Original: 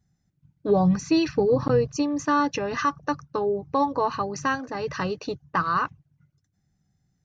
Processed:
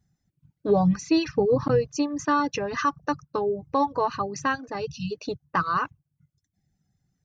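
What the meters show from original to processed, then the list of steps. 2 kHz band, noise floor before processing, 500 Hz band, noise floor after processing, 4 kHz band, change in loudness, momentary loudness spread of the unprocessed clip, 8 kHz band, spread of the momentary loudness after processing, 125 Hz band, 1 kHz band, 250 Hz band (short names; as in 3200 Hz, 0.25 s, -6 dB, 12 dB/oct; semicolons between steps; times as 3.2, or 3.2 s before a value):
-1.0 dB, -73 dBFS, -0.5 dB, -81 dBFS, -0.5 dB, -1.0 dB, 8 LU, n/a, 10 LU, -1.0 dB, -0.5 dB, -1.0 dB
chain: reverb removal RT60 0.73 s; spectral delete 4.86–5.11, 250–2500 Hz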